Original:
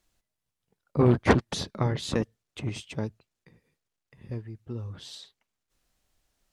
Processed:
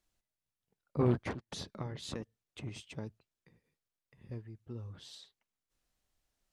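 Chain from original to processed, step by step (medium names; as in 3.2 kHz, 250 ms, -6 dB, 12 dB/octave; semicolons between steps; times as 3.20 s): 1.25–3.07 s: compression 5:1, threshold -29 dBFS, peak gain reduction 14.5 dB; trim -8 dB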